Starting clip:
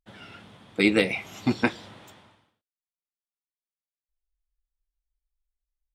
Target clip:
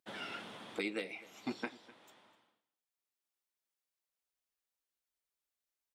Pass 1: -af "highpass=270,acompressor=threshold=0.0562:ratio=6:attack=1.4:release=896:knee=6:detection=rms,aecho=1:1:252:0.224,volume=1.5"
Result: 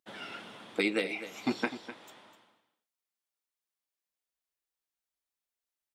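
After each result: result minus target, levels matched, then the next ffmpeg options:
compression: peak gain reduction -8.5 dB; echo-to-direct +7 dB
-af "highpass=270,acompressor=threshold=0.0168:ratio=6:attack=1.4:release=896:knee=6:detection=rms,aecho=1:1:252:0.224,volume=1.5"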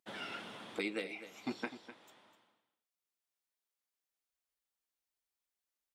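echo-to-direct +7 dB
-af "highpass=270,acompressor=threshold=0.0168:ratio=6:attack=1.4:release=896:knee=6:detection=rms,aecho=1:1:252:0.1,volume=1.5"

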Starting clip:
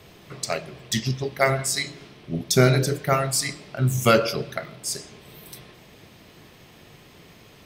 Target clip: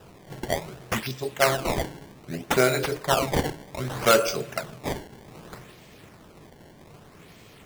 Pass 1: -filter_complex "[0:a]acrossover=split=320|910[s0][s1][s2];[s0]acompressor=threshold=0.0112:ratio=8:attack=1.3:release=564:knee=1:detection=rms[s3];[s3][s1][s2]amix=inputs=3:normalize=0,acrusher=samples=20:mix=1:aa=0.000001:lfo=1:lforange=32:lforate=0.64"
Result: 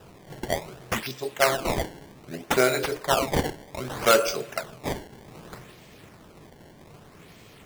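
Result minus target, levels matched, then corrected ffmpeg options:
compression: peak gain reduction +8 dB
-filter_complex "[0:a]acrossover=split=320|910[s0][s1][s2];[s0]acompressor=threshold=0.0316:ratio=8:attack=1.3:release=564:knee=1:detection=rms[s3];[s3][s1][s2]amix=inputs=3:normalize=0,acrusher=samples=20:mix=1:aa=0.000001:lfo=1:lforange=32:lforate=0.64"

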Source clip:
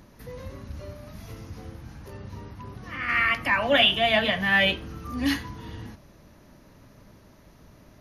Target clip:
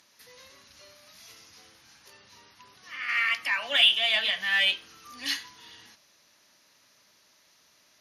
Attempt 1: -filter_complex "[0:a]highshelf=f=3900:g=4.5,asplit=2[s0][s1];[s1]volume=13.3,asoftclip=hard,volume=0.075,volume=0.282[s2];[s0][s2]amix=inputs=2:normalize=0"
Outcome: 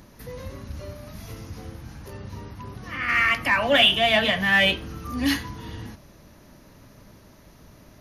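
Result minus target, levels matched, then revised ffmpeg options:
4 kHz band -2.5 dB
-filter_complex "[0:a]bandpass=f=4700:t=q:w=0.81:csg=0,highshelf=f=3900:g=4.5,asplit=2[s0][s1];[s1]volume=13.3,asoftclip=hard,volume=0.075,volume=0.282[s2];[s0][s2]amix=inputs=2:normalize=0"

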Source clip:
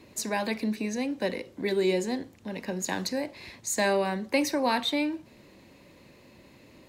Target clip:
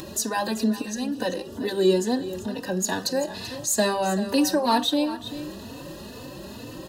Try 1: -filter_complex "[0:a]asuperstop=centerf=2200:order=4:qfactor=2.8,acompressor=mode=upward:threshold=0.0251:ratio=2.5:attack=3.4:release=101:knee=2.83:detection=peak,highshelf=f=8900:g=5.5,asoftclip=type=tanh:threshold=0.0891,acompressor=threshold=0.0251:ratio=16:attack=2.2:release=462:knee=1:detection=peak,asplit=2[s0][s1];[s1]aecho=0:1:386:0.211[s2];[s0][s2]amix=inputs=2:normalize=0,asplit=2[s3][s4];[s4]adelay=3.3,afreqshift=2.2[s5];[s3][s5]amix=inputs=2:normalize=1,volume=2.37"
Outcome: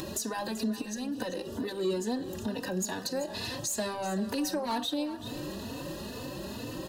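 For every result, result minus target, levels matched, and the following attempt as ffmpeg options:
compression: peak gain reduction +9.5 dB; saturation: distortion +14 dB
-filter_complex "[0:a]asuperstop=centerf=2200:order=4:qfactor=2.8,acompressor=mode=upward:threshold=0.0251:ratio=2.5:attack=3.4:release=101:knee=2.83:detection=peak,highshelf=f=8900:g=5.5,asoftclip=type=tanh:threshold=0.0891,asplit=2[s0][s1];[s1]aecho=0:1:386:0.211[s2];[s0][s2]amix=inputs=2:normalize=0,asplit=2[s3][s4];[s4]adelay=3.3,afreqshift=2.2[s5];[s3][s5]amix=inputs=2:normalize=1,volume=2.37"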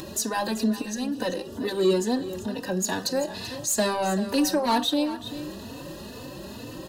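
saturation: distortion +14 dB
-filter_complex "[0:a]asuperstop=centerf=2200:order=4:qfactor=2.8,acompressor=mode=upward:threshold=0.0251:ratio=2.5:attack=3.4:release=101:knee=2.83:detection=peak,highshelf=f=8900:g=5.5,asoftclip=type=tanh:threshold=0.237,asplit=2[s0][s1];[s1]aecho=0:1:386:0.211[s2];[s0][s2]amix=inputs=2:normalize=0,asplit=2[s3][s4];[s4]adelay=3.3,afreqshift=2.2[s5];[s3][s5]amix=inputs=2:normalize=1,volume=2.37"

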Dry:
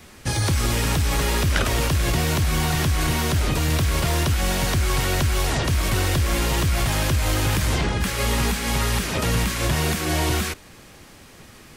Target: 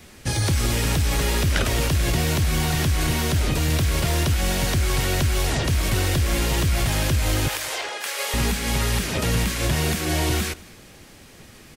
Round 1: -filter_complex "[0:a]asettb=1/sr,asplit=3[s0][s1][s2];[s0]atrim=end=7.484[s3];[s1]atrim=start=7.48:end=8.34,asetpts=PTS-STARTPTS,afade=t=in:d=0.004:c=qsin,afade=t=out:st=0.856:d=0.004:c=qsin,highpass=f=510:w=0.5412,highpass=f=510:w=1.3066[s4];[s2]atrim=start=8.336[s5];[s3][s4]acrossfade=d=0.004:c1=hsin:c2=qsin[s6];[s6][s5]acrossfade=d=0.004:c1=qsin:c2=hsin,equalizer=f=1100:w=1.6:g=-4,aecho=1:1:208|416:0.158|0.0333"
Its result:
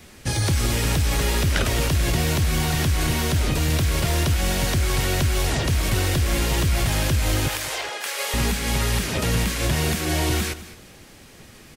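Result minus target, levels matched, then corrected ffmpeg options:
echo-to-direct +7 dB
-filter_complex "[0:a]asettb=1/sr,asplit=3[s0][s1][s2];[s0]atrim=end=7.484[s3];[s1]atrim=start=7.48:end=8.34,asetpts=PTS-STARTPTS,afade=t=in:d=0.004:c=qsin,afade=t=out:st=0.856:d=0.004:c=qsin,highpass=f=510:w=0.5412,highpass=f=510:w=1.3066[s4];[s2]atrim=start=8.336[s5];[s3][s4]acrossfade=d=0.004:c1=hsin:c2=qsin[s6];[s6][s5]acrossfade=d=0.004:c1=qsin:c2=hsin,equalizer=f=1100:w=1.6:g=-4,aecho=1:1:208|416:0.0708|0.0149"

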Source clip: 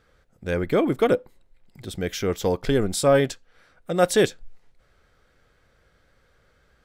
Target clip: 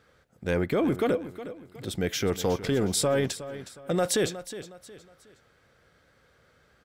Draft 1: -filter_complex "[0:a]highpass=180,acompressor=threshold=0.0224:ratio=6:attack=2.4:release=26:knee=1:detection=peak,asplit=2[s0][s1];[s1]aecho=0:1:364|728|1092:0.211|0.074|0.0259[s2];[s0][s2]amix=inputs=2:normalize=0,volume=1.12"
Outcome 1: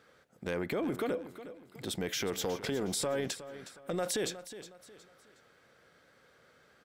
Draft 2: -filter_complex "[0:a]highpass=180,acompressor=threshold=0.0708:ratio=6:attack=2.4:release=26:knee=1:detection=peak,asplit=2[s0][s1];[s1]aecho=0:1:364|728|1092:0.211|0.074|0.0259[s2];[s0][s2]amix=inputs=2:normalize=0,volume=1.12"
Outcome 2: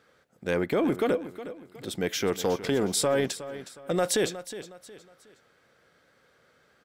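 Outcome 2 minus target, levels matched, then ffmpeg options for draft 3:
125 Hz band -4.5 dB
-filter_complex "[0:a]highpass=82,acompressor=threshold=0.0708:ratio=6:attack=2.4:release=26:knee=1:detection=peak,asplit=2[s0][s1];[s1]aecho=0:1:364|728|1092:0.211|0.074|0.0259[s2];[s0][s2]amix=inputs=2:normalize=0,volume=1.12"

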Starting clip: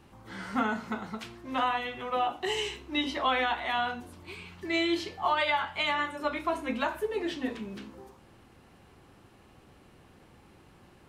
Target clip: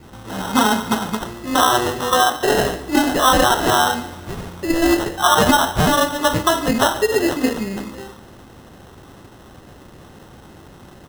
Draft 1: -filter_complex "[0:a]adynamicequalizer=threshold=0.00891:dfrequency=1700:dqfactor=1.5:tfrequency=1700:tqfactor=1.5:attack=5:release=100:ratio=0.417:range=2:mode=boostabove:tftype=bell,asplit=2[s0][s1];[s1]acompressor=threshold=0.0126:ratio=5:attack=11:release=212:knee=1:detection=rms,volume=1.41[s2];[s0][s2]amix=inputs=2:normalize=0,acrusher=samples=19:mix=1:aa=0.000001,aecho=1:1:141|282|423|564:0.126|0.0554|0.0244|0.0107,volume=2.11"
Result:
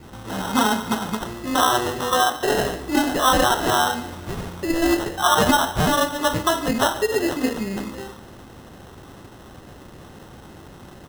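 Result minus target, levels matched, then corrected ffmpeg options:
compression: peak gain reduction +9.5 dB
-filter_complex "[0:a]adynamicequalizer=threshold=0.00891:dfrequency=1700:dqfactor=1.5:tfrequency=1700:tqfactor=1.5:attack=5:release=100:ratio=0.417:range=2:mode=boostabove:tftype=bell,asplit=2[s0][s1];[s1]acompressor=threshold=0.0501:ratio=5:attack=11:release=212:knee=1:detection=rms,volume=1.41[s2];[s0][s2]amix=inputs=2:normalize=0,acrusher=samples=19:mix=1:aa=0.000001,aecho=1:1:141|282|423|564:0.126|0.0554|0.0244|0.0107,volume=2.11"

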